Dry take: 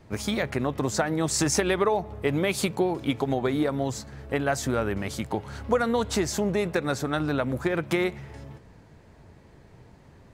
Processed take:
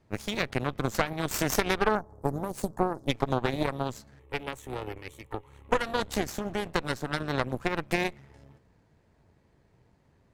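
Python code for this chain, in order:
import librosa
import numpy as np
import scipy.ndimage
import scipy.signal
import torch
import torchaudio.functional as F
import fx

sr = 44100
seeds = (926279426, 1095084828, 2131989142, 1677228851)

y = fx.cheby1_bandstop(x, sr, low_hz=1000.0, high_hz=6300.0, order=2, at=(1.95, 3.08))
y = fx.fixed_phaser(y, sr, hz=1000.0, stages=8, at=(4.19, 5.72))
y = fx.cheby_harmonics(y, sr, harmonics=(3, 4, 7), levels_db=(-14, -12, -33), full_scale_db=-10.0)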